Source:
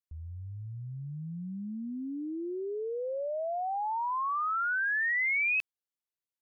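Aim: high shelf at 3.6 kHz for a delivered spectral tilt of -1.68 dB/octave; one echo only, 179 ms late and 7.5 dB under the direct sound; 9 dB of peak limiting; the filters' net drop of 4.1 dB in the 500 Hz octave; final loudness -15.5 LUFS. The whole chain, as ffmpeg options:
-af "equalizer=f=500:t=o:g=-5.5,highshelf=f=3600:g=4.5,alimiter=level_in=2.51:limit=0.0631:level=0:latency=1,volume=0.398,aecho=1:1:179:0.422,volume=10.6"

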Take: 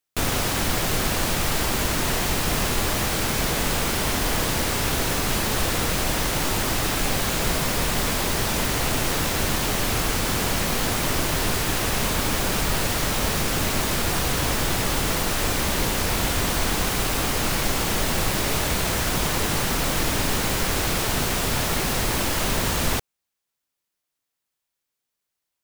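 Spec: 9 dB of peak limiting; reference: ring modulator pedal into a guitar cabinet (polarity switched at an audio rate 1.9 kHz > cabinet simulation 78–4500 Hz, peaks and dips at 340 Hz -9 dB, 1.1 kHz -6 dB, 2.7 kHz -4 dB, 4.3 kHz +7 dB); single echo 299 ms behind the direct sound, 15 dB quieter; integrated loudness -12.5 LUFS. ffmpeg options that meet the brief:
-af "alimiter=limit=0.133:level=0:latency=1,aecho=1:1:299:0.178,aeval=exprs='val(0)*sgn(sin(2*PI*1900*n/s))':c=same,highpass=78,equalizer=f=340:t=q:w=4:g=-9,equalizer=f=1100:t=q:w=4:g=-6,equalizer=f=2700:t=q:w=4:g=-4,equalizer=f=4300:t=q:w=4:g=7,lowpass=f=4500:w=0.5412,lowpass=f=4500:w=1.3066,volume=5.31"

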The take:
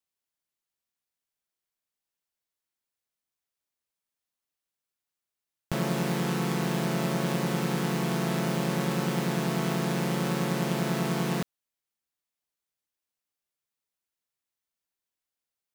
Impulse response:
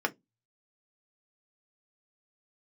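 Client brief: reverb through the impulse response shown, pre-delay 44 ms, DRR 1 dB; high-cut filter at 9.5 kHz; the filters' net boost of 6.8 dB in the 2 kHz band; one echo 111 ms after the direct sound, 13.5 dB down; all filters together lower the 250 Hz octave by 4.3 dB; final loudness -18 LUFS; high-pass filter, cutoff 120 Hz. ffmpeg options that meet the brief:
-filter_complex "[0:a]highpass=120,lowpass=9500,equalizer=f=250:t=o:g=-6,equalizer=f=2000:t=o:g=8.5,aecho=1:1:111:0.211,asplit=2[s0][s1];[1:a]atrim=start_sample=2205,adelay=44[s2];[s1][s2]afir=irnorm=-1:irlink=0,volume=0.335[s3];[s0][s3]amix=inputs=2:normalize=0,volume=2.66"

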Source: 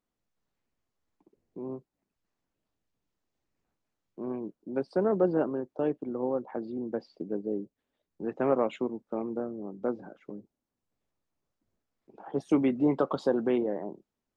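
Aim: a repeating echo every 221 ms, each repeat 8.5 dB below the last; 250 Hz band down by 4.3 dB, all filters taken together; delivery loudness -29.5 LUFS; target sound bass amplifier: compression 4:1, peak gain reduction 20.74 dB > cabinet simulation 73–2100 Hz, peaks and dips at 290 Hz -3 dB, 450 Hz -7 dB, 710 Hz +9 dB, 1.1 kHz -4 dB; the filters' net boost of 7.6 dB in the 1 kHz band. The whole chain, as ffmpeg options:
-af "equalizer=f=250:t=o:g=-3,equalizer=f=1000:t=o:g=6,aecho=1:1:221|442|663|884:0.376|0.143|0.0543|0.0206,acompressor=threshold=0.00631:ratio=4,highpass=f=73:w=0.5412,highpass=f=73:w=1.3066,equalizer=f=290:t=q:w=4:g=-3,equalizer=f=450:t=q:w=4:g=-7,equalizer=f=710:t=q:w=4:g=9,equalizer=f=1100:t=q:w=4:g=-4,lowpass=f=2100:w=0.5412,lowpass=f=2100:w=1.3066,volume=7.94"

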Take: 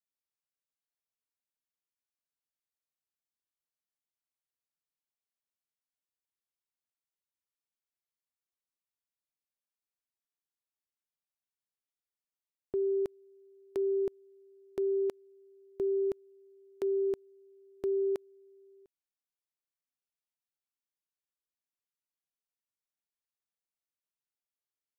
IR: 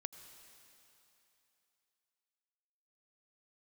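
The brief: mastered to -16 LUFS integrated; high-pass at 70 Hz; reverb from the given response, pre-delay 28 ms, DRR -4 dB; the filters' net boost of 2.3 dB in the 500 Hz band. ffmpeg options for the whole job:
-filter_complex "[0:a]highpass=70,equalizer=f=500:t=o:g=3.5,asplit=2[s0][s1];[1:a]atrim=start_sample=2205,adelay=28[s2];[s1][s2]afir=irnorm=-1:irlink=0,volume=2.24[s3];[s0][s3]amix=inputs=2:normalize=0,volume=2.37"

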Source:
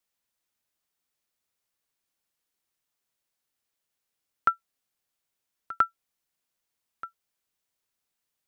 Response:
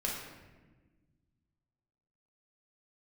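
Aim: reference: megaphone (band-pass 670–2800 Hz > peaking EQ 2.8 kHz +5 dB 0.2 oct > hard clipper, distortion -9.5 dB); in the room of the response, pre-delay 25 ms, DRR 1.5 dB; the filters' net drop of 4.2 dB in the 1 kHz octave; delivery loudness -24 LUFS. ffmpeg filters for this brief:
-filter_complex "[0:a]equalizer=f=1000:t=o:g=-6.5,asplit=2[s0][s1];[1:a]atrim=start_sample=2205,adelay=25[s2];[s1][s2]afir=irnorm=-1:irlink=0,volume=0.501[s3];[s0][s3]amix=inputs=2:normalize=0,highpass=670,lowpass=2800,equalizer=f=2800:t=o:w=0.2:g=5,asoftclip=type=hard:threshold=0.0668,volume=4.22"

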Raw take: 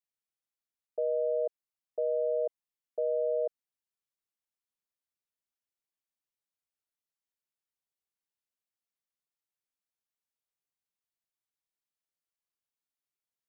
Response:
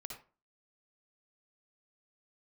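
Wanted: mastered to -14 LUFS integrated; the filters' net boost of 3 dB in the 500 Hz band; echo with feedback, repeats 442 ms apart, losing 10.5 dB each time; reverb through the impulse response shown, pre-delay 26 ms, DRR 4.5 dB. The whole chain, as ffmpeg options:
-filter_complex "[0:a]equalizer=f=500:t=o:g=3.5,aecho=1:1:442|884|1326:0.299|0.0896|0.0269,asplit=2[s0][s1];[1:a]atrim=start_sample=2205,adelay=26[s2];[s1][s2]afir=irnorm=-1:irlink=0,volume=0.891[s3];[s0][s3]amix=inputs=2:normalize=0,volume=6.68"

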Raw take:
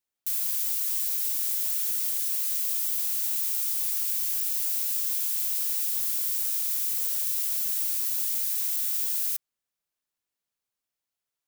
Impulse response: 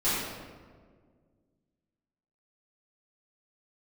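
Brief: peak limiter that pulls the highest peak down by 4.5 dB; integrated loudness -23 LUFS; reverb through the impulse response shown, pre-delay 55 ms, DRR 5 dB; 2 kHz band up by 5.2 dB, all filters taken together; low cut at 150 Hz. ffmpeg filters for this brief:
-filter_complex "[0:a]highpass=150,equalizer=f=2000:t=o:g=6.5,alimiter=limit=0.119:level=0:latency=1,asplit=2[s0][s1];[1:a]atrim=start_sample=2205,adelay=55[s2];[s1][s2]afir=irnorm=-1:irlink=0,volume=0.141[s3];[s0][s3]amix=inputs=2:normalize=0,volume=1.26"

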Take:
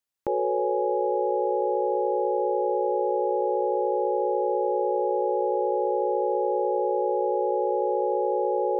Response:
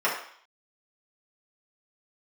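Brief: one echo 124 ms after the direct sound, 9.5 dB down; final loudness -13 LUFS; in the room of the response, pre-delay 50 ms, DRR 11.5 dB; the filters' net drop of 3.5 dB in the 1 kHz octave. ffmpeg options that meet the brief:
-filter_complex "[0:a]equalizer=f=1000:t=o:g=-4.5,aecho=1:1:124:0.335,asplit=2[s0][s1];[1:a]atrim=start_sample=2205,adelay=50[s2];[s1][s2]afir=irnorm=-1:irlink=0,volume=0.0501[s3];[s0][s3]amix=inputs=2:normalize=0,volume=4.22"

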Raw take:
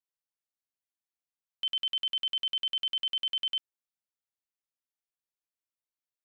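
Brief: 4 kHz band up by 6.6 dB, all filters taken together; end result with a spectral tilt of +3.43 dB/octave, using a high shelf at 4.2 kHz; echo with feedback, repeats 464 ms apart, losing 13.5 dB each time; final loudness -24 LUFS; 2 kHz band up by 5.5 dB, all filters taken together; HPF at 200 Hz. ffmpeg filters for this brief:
-af "highpass=200,equalizer=f=2000:t=o:g=3,equalizer=f=4000:t=o:g=4.5,highshelf=f=4200:g=7.5,aecho=1:1:464|928:0.211|0.0444,volume=0.841"

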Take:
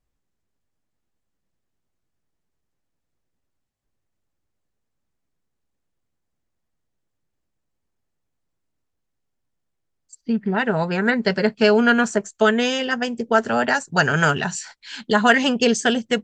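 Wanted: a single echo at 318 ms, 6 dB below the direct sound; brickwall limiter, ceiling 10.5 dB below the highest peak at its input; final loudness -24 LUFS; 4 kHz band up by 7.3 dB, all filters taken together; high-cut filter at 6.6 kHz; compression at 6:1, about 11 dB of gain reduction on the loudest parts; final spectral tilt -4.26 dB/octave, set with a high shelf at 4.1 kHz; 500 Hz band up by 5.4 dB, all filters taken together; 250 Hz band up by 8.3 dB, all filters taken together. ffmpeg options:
-af "lowpass=6600,equalizer=f=250:t=o:g=8.5,equalizer=f=500:t=o:g=4,equalizer=f=4000:t=o:g=8.5,highshelf=f=4100:g=4.5,acompressor=threshold=0.126:ratio=6,alimiter=limit=0.15:level=0:latency=1,aecho=1:1:318:0.501,volume=1.06"

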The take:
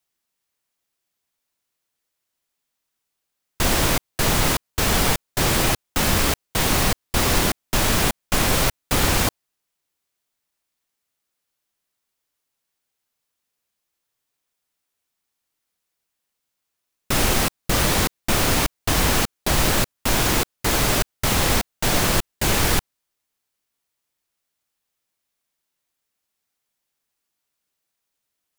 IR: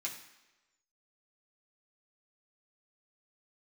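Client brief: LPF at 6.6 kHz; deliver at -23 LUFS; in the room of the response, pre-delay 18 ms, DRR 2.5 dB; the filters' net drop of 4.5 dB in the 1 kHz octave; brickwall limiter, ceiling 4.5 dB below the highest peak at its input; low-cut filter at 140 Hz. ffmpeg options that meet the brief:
-filter_complex "[0:a]highpass=140,lowpass=6600,equalizer=f=1000:t=o:g=-6,alimiter=limit=0.188:level=0:latency=1,asplit=2[s0][s1];[1:a]atrim=start_sample=2205,adelay=18[s2];[s1][s2]afir=irnorm=-1:irlink=0,volume=0.708[s3];[s0][s3]amix=inputs=2:normalize=0,volume=1.06"

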